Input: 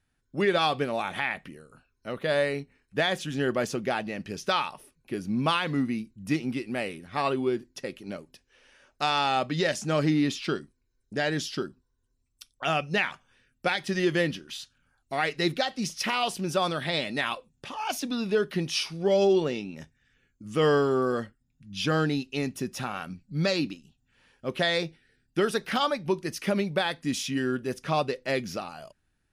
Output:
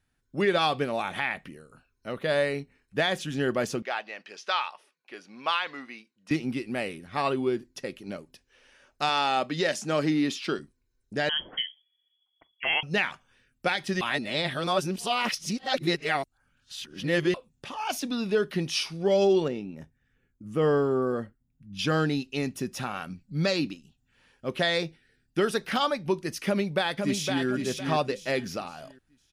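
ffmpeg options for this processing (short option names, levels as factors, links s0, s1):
-filter_complex "[0:a]asettb=1/sr,asplit=3[s0][s1][s2];[s0]atrim=end=3.824[s3];[s1]atrim=start=3.82:end=6.31,asetpts=PTS-STARTPTS,afade=t=in:d=0.004:c=qsin,afade=t=out:st=2.486:d=0.004:c=qsin,highpass=740,lowpass=5000[s4];[s2]atrim=start=6.306[s5];[s3][s4]acrossfade=d=0.004:c1=hsin:c2=qsin[s6];[s6][s5]acrossfade=d=0.004:c1=qsin:c2=hsin,asettb=1/sr,asplit=3[s7][s8][s9];[s7]atrim=end=9.094[s10];[s8]atrim=start=9.09:end=10.59,asetpts=PTS-STARTPTS,afade=t=in:d=0.004:c=qsin,afade=t=out:st=1.496:d=0.004:c=qsin,highpass=190[s11];[s9]atrim=start=10.586[s12];[s10][s11]acrossfade=d=0.004:c1=hsin:c2=qsin[s13];[s13][s12]acrossfade=d=0.004:c1=qsin:c2=hsin,asettb=1/sr,asplit=3[s14][s15][s16];[s14]atrim=end=11.294[s17];[s15]atrim=start=11.29:end=12.83,asetpts=PTS-STARTPTS,afade=t=in:d=0.004:c=qsin,afade=t=out:st=1.536:d=0.004:c=qsin,lowpass=f=2900:t=q:w=0.5098,lowpass=f=2900:t=q:w=0.6013,lowpass=f=2900:t=q:w=0.9,lowpass=f=2900:t=q:w=2.563,afreqshift=-3400[s18];[s16]atrim=start=12.826[s19];[s17][s18]acrossfade=d=0.004:c1=hsin:c2=qsin[s20];[s20][s19]acrossfade=d=0.004:c1=qsin:c2=hsin,asettb=1/sr,asplit=3[s21][s22][s23];[s21]atrim=end=19.484[s24];[s22]atrim=start=19.48:end=21.79,asetpts=PTS-STARTPTS,afade=t=in:d=0.004:c=qsin,afade=t=out:st=2.306:d=0.004:c=qsin,equalizer=f=4800:w=0.39:g=-12[s25];[s23]atrim=start=21.786[s26];[s24][s25]acrossfade=d=0.004:c1=hsin:c2=qsin[s27];[s27][s26]acrossfade=d=0.004:c1=qsin:c2=hsin,asplit=2[s28][s29];[s29]afade=t=in:st=26.46:d=0.01,afade=t=out:st=27.45:d=0.01,aecho=0:1:510|1020|1530|2040:0.562341|0.168702|0.0506107|0.0151832[s30];[s28][s30]amix=inputs=2:normalize=0,asplit=3[s31][s32][s33];[s31]atrim=end=14.012[s34];[s32]atrim=start=14.008:end=17.342,asetpts=PTS-STARTPTS,areverse[s35];[s33]atrim=start=17.338[s36];[s34][s35]acrossfade=d=0.004:c1=hsin:c2=hsin[s37];[s37][s36]acrossfade=d=0.004:c1=hsin:c2=hsin"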